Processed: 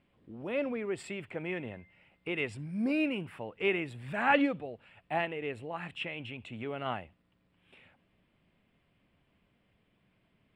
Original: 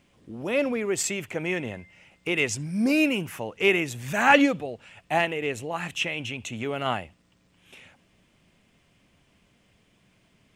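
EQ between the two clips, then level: boxcar filter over 7 samples; -7.5 dB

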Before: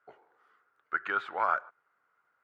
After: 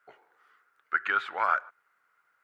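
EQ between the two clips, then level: peaking EQ 2 kHz +5.5 dB 1.4 oct; treble shelf 2.8 kHz +9.5 dB; -2.0 dB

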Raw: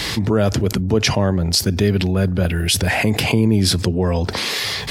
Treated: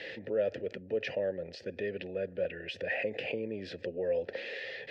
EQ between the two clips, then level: vowel filter e; distance through air 140 m; -3.0 dB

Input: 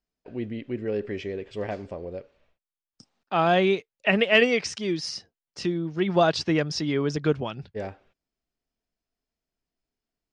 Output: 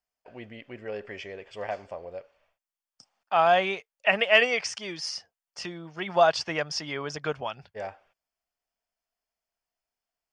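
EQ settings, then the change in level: resonant low shelf 480 Hz -11 dB, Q 1.5; band-stop 3.9 kHz, Q 6.2; 0.0 dB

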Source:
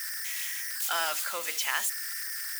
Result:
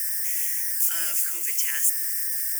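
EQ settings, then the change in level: tone controls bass +6 dB, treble +11 dB; static phaser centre 340 Hz, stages 4; static phaser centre 790 Hz, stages 8; 0.0 dB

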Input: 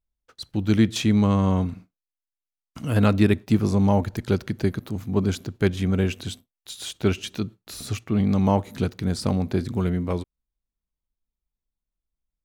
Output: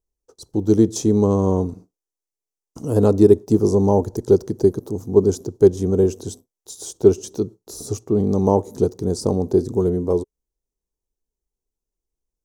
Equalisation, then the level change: FFT filter 230 Hz 0 dB, 420 Hz +14 dB, 610 Hz +2 dB, 920 Hz +3 dB, 1.4 kHz -11 dB, 2.3 kHz -21 dB, 4.2 kHz -7 dB, 5.9 kHz +7 dB, 13 kHz 0 dB; 0.0 dB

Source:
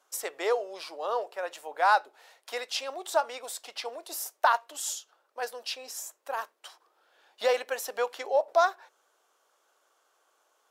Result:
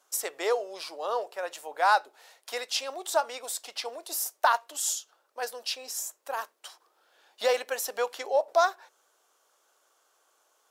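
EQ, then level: tone controls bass +2 dB, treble +5 dB; 0.0 dB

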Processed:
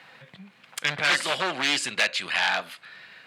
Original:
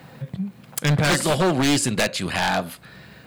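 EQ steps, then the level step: band-pass filter 2.4 kHz, Q 0.99; +3.0 dB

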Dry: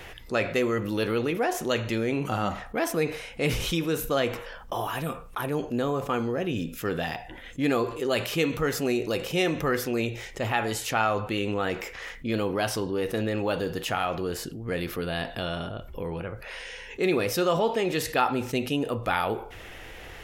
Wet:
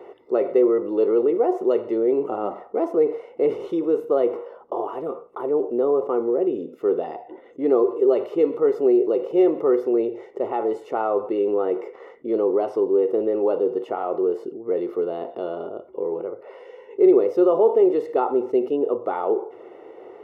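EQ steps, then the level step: Savitzky-Golay filter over 65 samples; resonant high-pass 390 Hz, resonance Q 4.4; 0.0 dB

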